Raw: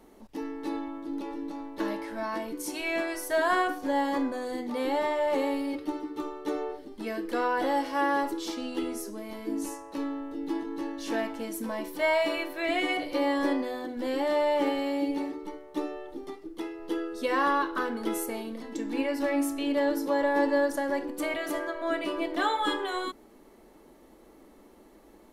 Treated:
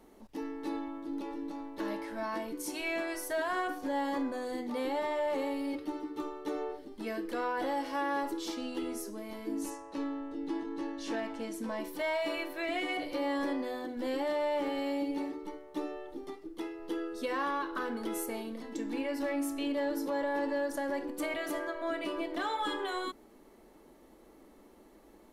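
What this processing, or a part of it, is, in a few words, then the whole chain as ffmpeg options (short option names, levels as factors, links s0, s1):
soft clipper into limiter: -filter_complex "[0:a]asoftclip=type=tanh:threshold=0.141,alimiter=limit=0.0708:level=0:latency=1:release=129,asettb=1/sr,asplit=3[s0][s1][s2];[s0]atrim=end=9.704[s3];[s1]atrim=start=9.7:end=11.8,asetpts=PTS-STARTPTS,afade=t=in:d=0.004:c=qsin,afade=t=out:st=2.096:d=0.004:c=qsin,lowpass=8300[s4];[s2]atrim=start=11.796[s5];[s3][s4]acrossfade=d=0.004:c1=hsin:c2=qsin[s6];[s6][s5]acrossfade=d=0.004:c1=qsin:c2=hsin,volume=0.708"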